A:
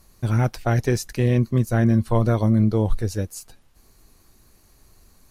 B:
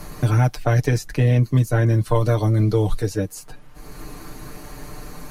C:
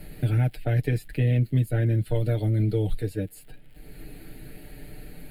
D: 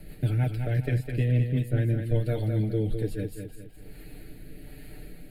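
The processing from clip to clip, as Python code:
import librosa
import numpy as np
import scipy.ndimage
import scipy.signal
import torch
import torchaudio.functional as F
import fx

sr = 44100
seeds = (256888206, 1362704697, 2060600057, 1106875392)

y1 = x + 0.8 * np.pad(x, (int(6.7 * sr / 1000.0), 0))[:len(x)]
y1 = fx.band_squash(y1, sr, depth_pct=70)
y2 = fx.dmg_crackle(y1, sr, seeds[0], per_s=120.0, level_db=-38.0)
y2 = fx.fixed_phaser(y2, sr, hz=2600.0, stages=4)
y2 = F.gain(torch.from_numpy(y2), -5.0).numpy()
y3 = fx.rotary_switch(y2, sr, hz=6.3, then_hz=1.2, switch_at_s=1.25)
y3 = fx.echo_feedback(y3, sr, ms=206, feedback_pct=40, wet_db=-6.5)
y3 = F.gain(torch.from_numpy(y3), -1.0).numpy()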